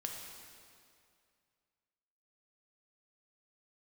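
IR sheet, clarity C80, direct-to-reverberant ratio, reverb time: 4.0 dB, 0.5 dB, 2.3 s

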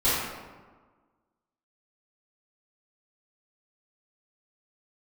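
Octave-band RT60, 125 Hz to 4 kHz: 1.4, 1.6, 1.4, 1.4, 1.1, 0.75 seconds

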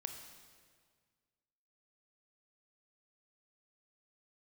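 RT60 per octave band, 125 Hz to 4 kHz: 2.2, 2.0, 1.8, 1.7, 1.6, 1.5 seconds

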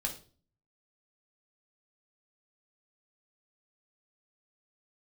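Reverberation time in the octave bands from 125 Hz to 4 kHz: 0.80, 0.60, 0.45, 0.35, 0.35, 0.35 seconds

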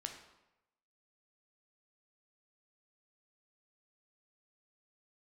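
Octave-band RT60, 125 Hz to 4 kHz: 0.95, 0.85, 0.95, 0.95, 0.85, 0.70 seconds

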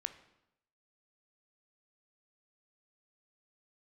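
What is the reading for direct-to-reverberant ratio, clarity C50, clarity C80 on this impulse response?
10.0 dB, 13.0 dB, 15.5 dB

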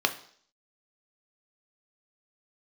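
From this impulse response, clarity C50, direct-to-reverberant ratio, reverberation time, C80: 14.0 dB, 6.0 dB, 0.55 s, 17.5 dB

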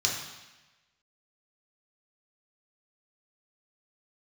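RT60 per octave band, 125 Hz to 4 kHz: 1.2, 1.1, 1.1, 1.1, 1.2, 1.1 seconds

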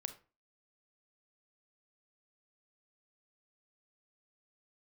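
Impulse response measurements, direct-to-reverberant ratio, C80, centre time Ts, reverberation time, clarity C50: 9.0 dB, 18.0 dB, 7 ms, 0.35 s, 12.5 dB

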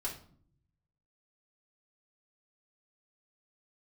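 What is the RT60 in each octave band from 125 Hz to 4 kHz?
1.4, 0.95, 0.60, 0.50, 0.40, 0.35 seconds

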